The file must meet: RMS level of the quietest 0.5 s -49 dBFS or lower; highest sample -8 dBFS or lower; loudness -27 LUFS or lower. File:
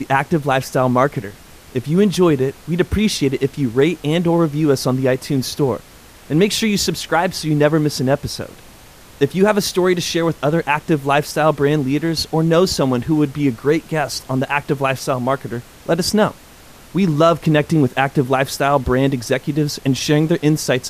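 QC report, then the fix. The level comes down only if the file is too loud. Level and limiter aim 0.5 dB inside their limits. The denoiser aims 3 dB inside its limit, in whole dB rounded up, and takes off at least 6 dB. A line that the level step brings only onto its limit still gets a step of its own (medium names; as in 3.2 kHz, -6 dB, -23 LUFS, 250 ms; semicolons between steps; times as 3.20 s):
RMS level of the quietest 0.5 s -42 dBFS: fail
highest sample -2.0 dBFS: fail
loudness -17.5 LUFS: fail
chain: trim -10 dB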